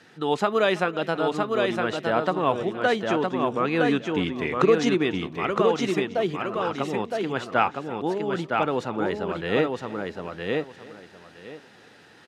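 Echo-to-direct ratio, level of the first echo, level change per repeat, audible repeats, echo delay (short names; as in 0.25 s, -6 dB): -3.0 dB, -20.0 dB, no steady repeat, 5, 0.326 s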